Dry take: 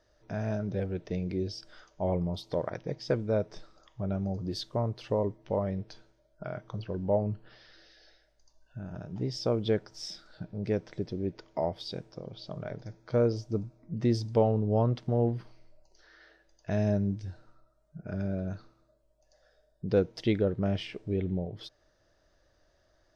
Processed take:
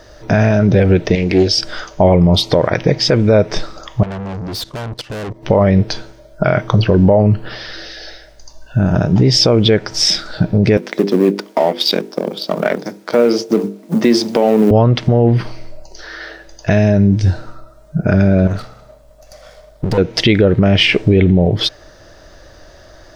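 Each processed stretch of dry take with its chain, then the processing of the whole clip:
1.15–1.58 s: peaking EQ 140 Hz -12 dB 2.4 oct + loudspeaker Doppler distortion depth 0.2 ms
4.03–5.43 s: valve stage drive 44 dB, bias 0.5 + level held to a coarse grid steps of 17 dB
10.77–14.71 s: companding laws mixed up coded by A + steep high-pass 190 Hz + hum notches 50/100/150/200/250/300/350/400/450/500 Hz
18.47–19.98 s: comb filter that takes the minimum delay 1.5 ms + compression 12:1, threshold -40 dBFS
whole clip: dynamic bell 2.3 kHz, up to +7 dB, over -54 dBFS, Q 1.2; compression 4:1, threshold -31 dBFS; loudness maximiser +28 dB; trim -1 dB

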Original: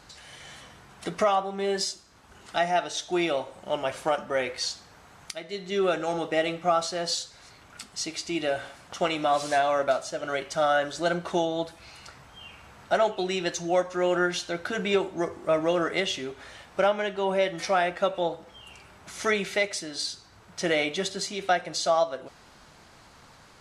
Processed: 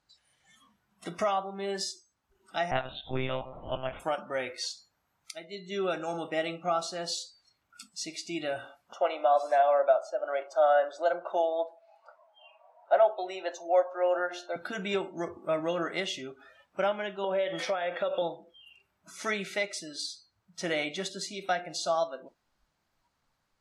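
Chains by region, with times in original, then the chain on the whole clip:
2.71–4.00 s: upward compressor, threshold -28 dBFS + monotone LPC vocoder at 8 kHz 130 Hz
8.94–14.56 s: resonant high-pass 590 Hz, resonance Q 2.5 + treble shelf 2.5 kHz -10 dB
17.24–18.22 s: peaking EQ 1.8 kHz +7.5 dB 2.4 oct + compression, threshold -27 dBFS + small resonant body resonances 500/3300 Hz, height 13 dB, ringing for 20 ms
whole clip: peaking EQ 440 Hz -5.5 dB 0.21 oct; de-hum 353.3 Hz, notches 28; spectral noise reduction 20 dB; trim -5 dB

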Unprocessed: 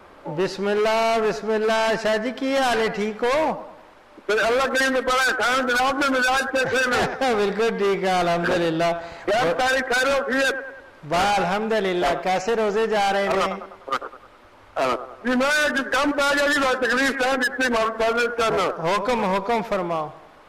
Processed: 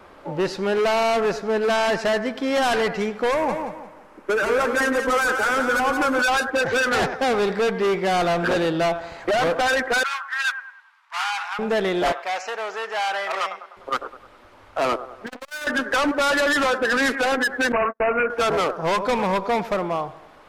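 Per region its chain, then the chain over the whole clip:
3.31–6.22 s: peaking EQ 3.9 kHz -9 dB 1.1 oct + band-stop 690 Hz, Q 6.5 + feedback delay 174 ms, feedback 30%, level -6.5 dB
10.03–11.59 s: steep high-pass 920 Hz 48 dB/octave + treble shelf 4.9 kHz -6 dB + three bands expanded up and down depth 40%
12.12–13.77 s: high-pass 860 Hz + treble shelf 6 kHz -6.5 dB
15.26–15.67 s: tone controls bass -10 dB, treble -9 dB + hard clipper -29 dBFS + transformer saturation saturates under 380 Hz
17.72–18.30 s: gate -26 dBFS, range -47 dB + careless resampling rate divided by 8×, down none, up filtered
whole clip: none

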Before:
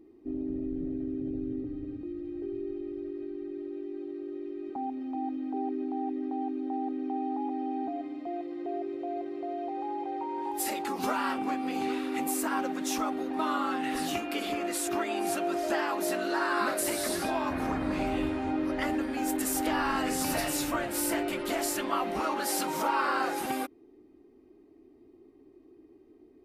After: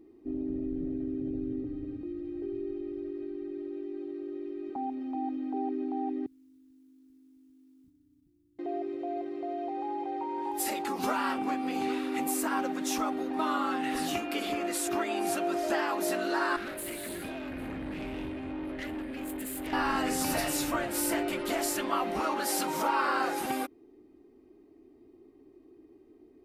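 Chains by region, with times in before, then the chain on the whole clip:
6.26–8.59 s: inverse Chebyshev band-stop 560–4100 Hz, stop band 70 dB + modulation noise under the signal 25 dB
16.56–19.73 s: static phaser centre 2.4 kHz, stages 4 + valve stage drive 33 dB, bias 0.55
whole clip: none

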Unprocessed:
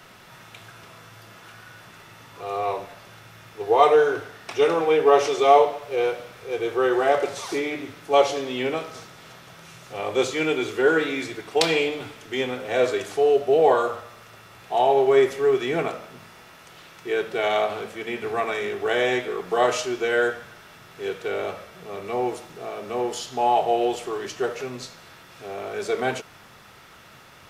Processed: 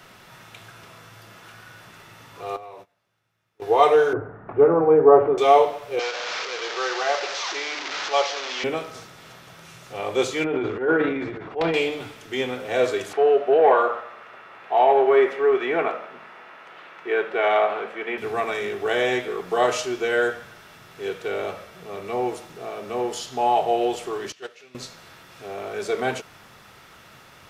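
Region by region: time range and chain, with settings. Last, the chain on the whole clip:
2.56–3.62 s: gate -35 dBFS, range -28 dB + high-pass 48 Hz + compression, threshold -38 dBFS
4.13–5.38 s: low-pass 1.4 kHz 24 dB/octave + bass shelf 380 Hz +9.5 dB
5.99–8.64 s: one-bit delta coder 32 kbps, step -21 dBFS + high-pass 710 Hz
10.44–11.74 s: block-companded coder 7-bit + low-pass 1.5 kHz + transient shaper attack -11 dB, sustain +8 dB
13.13–18.18 s: overdrive pedal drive 11 dB, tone 4.9 kHz, clips at -6 dBFS + three-band isolator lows -15 dB, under 190 Hz, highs -19 dB, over 2.7 kHz
24.32–24.75 s: frequency weighting D + gate -21 dBFS, range -20 dB
whole clip: none

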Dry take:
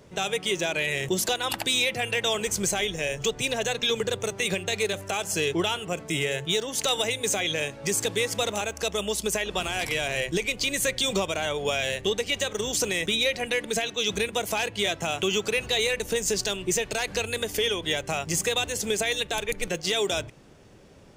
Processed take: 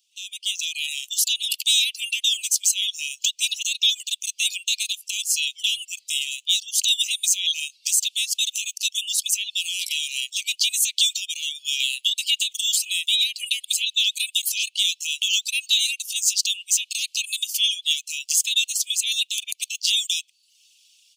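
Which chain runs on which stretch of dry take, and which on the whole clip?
11.80–14.49 s: peaking EQ 5.9 kHz -11 dB 0.25 oct + three bands compressed up and down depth 100%
whole clip: steep high-pass 2.7 kHz 72 dB/octave; reverb removal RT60 0.54 s; level rider gain up to 14 dB; trim -4 dB

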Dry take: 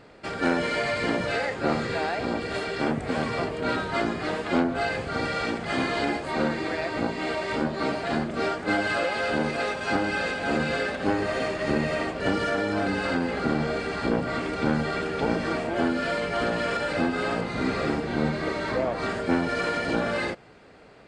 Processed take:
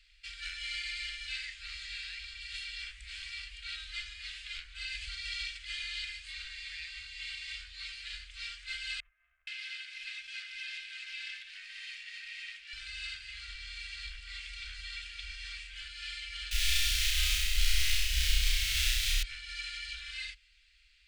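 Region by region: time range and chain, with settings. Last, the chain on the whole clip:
4.89–5.57 s: peaking EQ 870 Hz -3 dB 2.2 oct + level flattener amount 100%
9.00–12.73 s: rippled Chebyshev high-pass 480 Hz, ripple 6 dB + bands offset in time lows, highs 470 ms, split 780 Hz + loudspeaker Doppler distortion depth 0.14 ms
16.51–19.23 s: square wave that keeps the level + bass shelf 370 Hz +10 dB + flutter echo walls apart 5.6 m, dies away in 1.1 s
whole clip: inverse Chebyshev band-stop 130–910 Hz, stop band 60 dB; treble shelf 4.4 kHz -12 dB; trim +3.5 dB

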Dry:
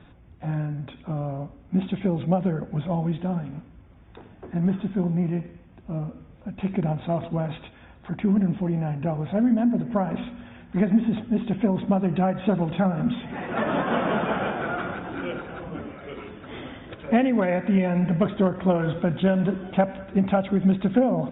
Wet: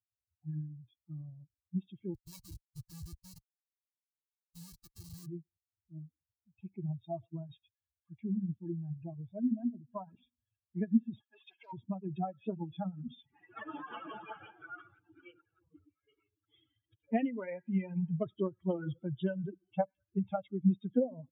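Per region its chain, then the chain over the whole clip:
2.14–5.26 s: delay 447 ms -23.5 dB + touch-sensitive flanger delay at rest 4.4 ms, full sweep at -22 dBFS + Schmitt trigger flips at -23.5 dBFS
11.20–11.73 s: high-pass 850 Hz + treble shelf 3.1 kHz -8.5 dB + waveshaping leveller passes 3
whole clip: expander on every frequency bin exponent 3; high-pass 74 Hz; peaking EQ 2.1 kHz -6 dB 3 oct; trim -3.5 dB

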